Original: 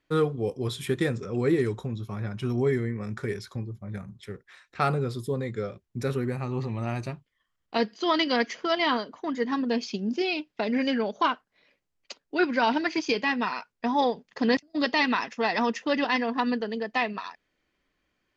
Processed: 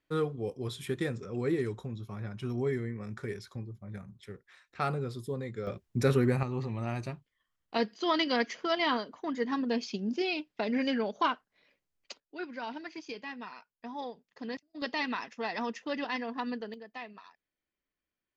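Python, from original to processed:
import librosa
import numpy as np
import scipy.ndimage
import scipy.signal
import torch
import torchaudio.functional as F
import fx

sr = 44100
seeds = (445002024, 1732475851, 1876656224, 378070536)

y = fx.gain(x, sr, db=fx.steps((0.0, -6.5), (5.67, 3.0), (6.43, -4.0), (12.2, -15.5), (14.82, -9.0), (16.74, -16.5)))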